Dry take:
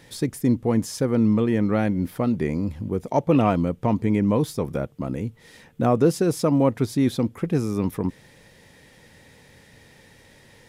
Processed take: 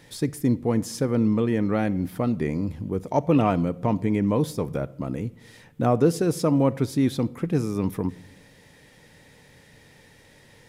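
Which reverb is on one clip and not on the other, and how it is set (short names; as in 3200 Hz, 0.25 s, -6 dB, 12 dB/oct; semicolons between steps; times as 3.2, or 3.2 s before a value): shoebox room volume 2100 m³, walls furnished, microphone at 0.41 m; gain -1.5 dB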